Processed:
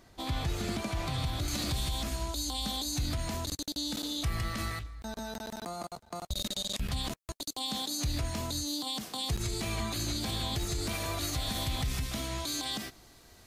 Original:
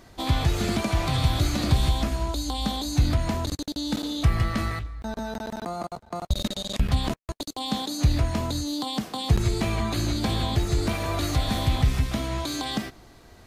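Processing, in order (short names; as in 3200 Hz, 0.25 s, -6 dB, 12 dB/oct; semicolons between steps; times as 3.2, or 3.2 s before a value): high shelf 3100 Hz +2 dB, from 1.48 s +11.5 dB; limiter -15 dBFS, peak gain reduction 7 dB; gain -8 dB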